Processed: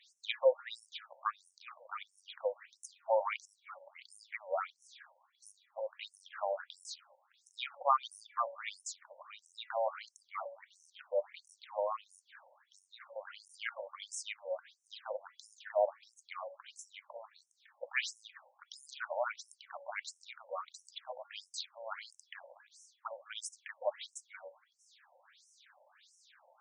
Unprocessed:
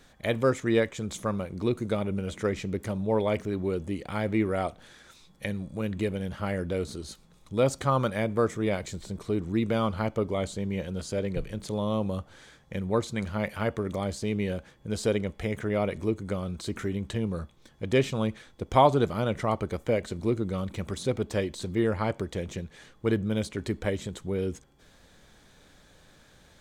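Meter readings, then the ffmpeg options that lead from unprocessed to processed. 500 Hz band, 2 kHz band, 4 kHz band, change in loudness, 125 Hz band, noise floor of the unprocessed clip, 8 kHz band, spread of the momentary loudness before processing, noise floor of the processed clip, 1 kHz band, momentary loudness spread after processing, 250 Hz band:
−10.0 dB, −6.5 dB, −5.5 dB, −10.0 dB, below −40 dB, −58 dBFS, −5.5 dB, 9 LU, −77 dBFS, −6.5 dB, 20 LU, below −40 dB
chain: -af "bandreject=frequency=281.9:width_type=h:width=4,bandreject=frequency=563.8:width_type=h:width=4,bandreject=frequency=845.7:width_type=h:width=4,bandreject=frequency=1127.6:width_type=h:width=4,bandreject=frequency=1409.5:width_type=h:width=4,bandreject=frequency=1691.4:width_type=h:width=4,bandreject=frequency=1973.3:width_type=h:width=4,afftfilt=real='re*between(b*sr/1024,670*pow(7600/670,0.5+0.5*sin(2*PI*1.5*pts/sr))/1.41,670*pow(7600/670,0.5+0.5*sin(2*PI*1.5*pts/sr))*1.41)':imag='im*between(b*sr/1024,670*pow(7600/670,0.5+0.5*sin(2*PI*1.5*pts/sr))/1.41,670*pow(7600/670,0.5+0.5*sin(2*PI*1.5*pts/sr))*1.41)':win_size=1024:overlap=0.75,volume=1.5dB"

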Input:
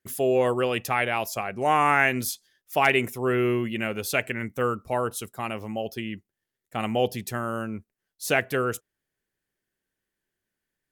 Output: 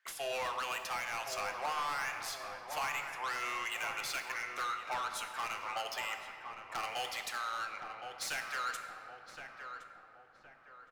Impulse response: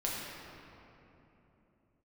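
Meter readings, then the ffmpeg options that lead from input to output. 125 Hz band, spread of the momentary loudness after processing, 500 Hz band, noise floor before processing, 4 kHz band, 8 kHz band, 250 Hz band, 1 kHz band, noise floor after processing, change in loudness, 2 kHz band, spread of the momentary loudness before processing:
−28.0 dB, 11 LU, −19.0 dB, −85 dBFS, −5.0 dB, −7.0 dB, −28.5 dB, −9.5 dB, −58 dBFS, −12.0 dB, −10.0 dB, 13 LU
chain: -filter_complex "[0:a]highpass=frequency=970:width=0.5412,highpass=frequency=970:width=1.3066,acompressor=threshold=-41dB:ratio=6,aeval=exprs='0.0447*sin(PI/2*2*val(0)/0.0447)':channel_layout=same,adynamicsmooth=sensitivity=6.5:basefreq=3200,asoftclip=type=tanh:threshold=-36dB,asplit=2[link_01][link_02];[link_02]adelay=1067,lowpass=frequency=1300:poles=1,volume=-5.5dB,asplit=2[link_03][link_04];[link_04]adelay=1067,lowpass=frequency=1300:poles=1,volume=0.47,asplit=2[link_05][link_06];[link_06]adelay=1067,lowpass=frequency=1300:poles=1,volume=0.47,asplit=2[link_07][link_08];[link_08]adelay=1067,lowpass=frequency=1300:poles=1,volume=0.47,asplit=2[link_09][link_10];[link_10]adelay=1067,lowpass=frequency=1300:poles=1,volume=0.47,asplit=2[link_11][link_12];[link_12]adelay=1067,lowpass=frequency=1300:poles=1,volume=0.47[link_13];[link_01][link_03][link_05][link_07][link_09][link_11][link_13]amix=inputs=7:normalize=0,asplit=2[link_14][link_15];[1:a]atrim=start_sample=2205,highshelf=frequency=6300:gain=5.5[link_16];[link_15][link_16]afir=irnorm=-1:irlink=0,volume=-7dB[link_17];[link_14][link_17]amix=inputs=2:normalize=0"

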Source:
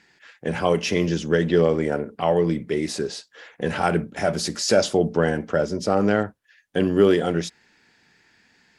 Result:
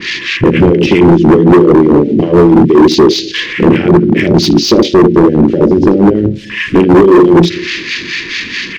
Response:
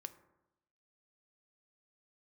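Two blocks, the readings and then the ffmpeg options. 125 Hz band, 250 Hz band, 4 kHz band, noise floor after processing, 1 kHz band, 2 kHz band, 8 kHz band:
+15.0 dB, +18.5 dB, +15.0 dB, −23 dBFS, +12.0 dB, +13.5 dB, +6.5 dB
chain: -filter_complex "[0:a]aeval=exprs='val(0)+0.5*0.0251*sgn(val(0))':channel_layout=same,acompressor=threshold=-30dB:ratio=4,aexciter=amount=11.2:drive=4.2:freq=2000,lowpass=3200,asplit=2[link_01][link_02];[link_02]adelay=76,lowpass=frequency=2400:poles=1,volume=-6.5dB,asplit=2[link_03][link_04];[link_04]adelay=76,lowpass=frequency=2400:poles=1,volume=0.19,asplit=2[link_05][link_06];[link_06]adelay=76,lowpass=frequency=2400:poles=1,volume=0.19[link_07];[link_01][link_03][link_05][link_07]amix=inputs=4:normalize=0,afwtdn=0.0501,acontrast=41,asplit=2[link_08][link_09];[1:a]atrim=start_sample=2205,lowpass=7700[link_10];[link_09][link_10]afir=irnorm=-1:irlink=0,volume=8dB[link_11];[link_08][link_11]amix=inputs=2:normalize=0,acrossover=split=1000[link_12][link_13];[link_12]aeval=exprs='val(0)*(1-0.7/2+0.7/2*cos(2*PI*4.6*n/s))':channel_layout=same[link_14];[link_13]aeval=exprs='val(0)*(1-0.7/2-0.7/2*cos(2*PI*4.6*n/s))':channel_layout=same[link_15];[link_14][link_15]amix=inputs=2:normalize=0,lowshelf=frequency=530:width_type=q:width=3:gain=14,asoftclip=type=hard:threshold=-3.5dB,adynamicequalizer=threshold=0.0447:dfrequency=2200:dqfactor=0.7:tfrequency=2200:tqfactor=0.7:attack=5:release=100:ratio=0.375:range=3.5:mode=cutabove:tftype=highshelf,volume=2dB"

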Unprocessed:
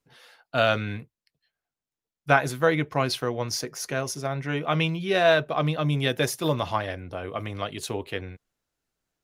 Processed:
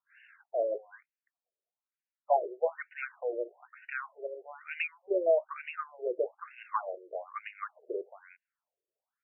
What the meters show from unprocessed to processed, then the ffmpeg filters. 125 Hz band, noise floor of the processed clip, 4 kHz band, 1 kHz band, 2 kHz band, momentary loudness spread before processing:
below −40 dB, below −85 dBFS, below −25 dB, −8.0 dB, −13.0 dB, 13 LU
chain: -filter_complex "[0:a]highpass=230,asplit=2[link_01][link_02];[link_02]aeval=exprs='clip(val(0),-1,0.0562)':channel_layout=same,volume=-9dB[link_03];[link_01][link_03]amix=inputs=2:normalize=0,afftfilt=real='re*between(b*sr/1024,440*pow(2100/440,0.5+0.5*sin(2*PI*1.1*pts/sr))/1.41,440*pow(2100/440,0.5+0.5*sin(2*PI*1.1*pts/sr))*1.41)':imag='im*between(b*sr/1024,440*pow(2100/440,0.5+0.5*sin(2*PI*1.1*pts/sr))/1.41,440*pow(2100/440,0.5+0.5*sin(2*PI*1.1*pts/sr))*1.41)':win_size=1024:overlap=0.75,volume=-4.5dB"

